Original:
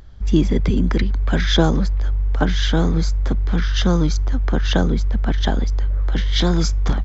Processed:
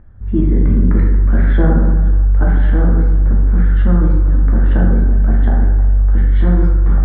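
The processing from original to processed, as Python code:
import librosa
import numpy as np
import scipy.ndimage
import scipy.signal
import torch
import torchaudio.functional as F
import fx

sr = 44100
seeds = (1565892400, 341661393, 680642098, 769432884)

y = fx.ladder_lowpass(x, sr, hz=2000.0, resonance_pct=40)
y = fx.low_shelf(y, sr, hz=380.0, db=11.0)
y = y + 10.0 ** (-23.0 / 20.0) * np.pad(y, (int(516 * sr / 1000.0), 0))[:len(y)]
y = fx.rev_plate(y, sr, seeds[0], rt60_s=1.4, hf_ratio=0.4, predelay_ms=0, drr_db=-3.0)
y = y * librosa.db_to_amplitude(-3.0)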